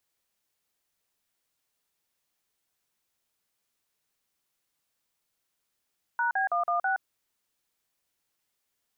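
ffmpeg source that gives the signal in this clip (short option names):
-f lavfi -i "aevalsrc='0.0473*clip(min(mod(t,0.163),0.12-mod(t,0.163))/0.002,0,1)*(eq(floor(t/0.163),0)*(sin(2*PI*941*mod(t,0.163))+sin(2*PI*1477*mod(t,0.163)))+eq(floor(t/0.163),1)*(sin(2*PI*770*mod(t,0.163))+sin(2*PI*1633*mod(t,0.163)))+eq(floor(t/0.163),2)*(sin(2*PI*697*mod(t,0.163))+sin(2*PI*1209*mod(t,0.163)))+eq(floor(t/0.163),3)*(sin(2*PI*697*mod(t,0.163))+sin(2*PI*1209*mod(t,0.163)))+eq(floor(t/0.163),4)*(sin(2*PI*770*mod(t,0.163))+sin(2*PI*1477*mod(t,0.163))))':d=0.815:s=44100"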